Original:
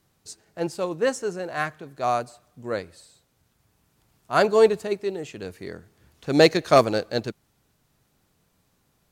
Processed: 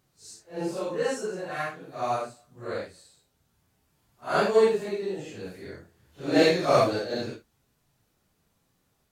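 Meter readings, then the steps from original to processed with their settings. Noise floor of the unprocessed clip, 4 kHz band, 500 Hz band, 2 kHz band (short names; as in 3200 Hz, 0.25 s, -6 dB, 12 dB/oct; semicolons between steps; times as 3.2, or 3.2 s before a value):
-69 dBFS, -3.5 dB, -3.5 dB, -3.5 dB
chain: phase scrambler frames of 0.2 s; gain -3.5 dB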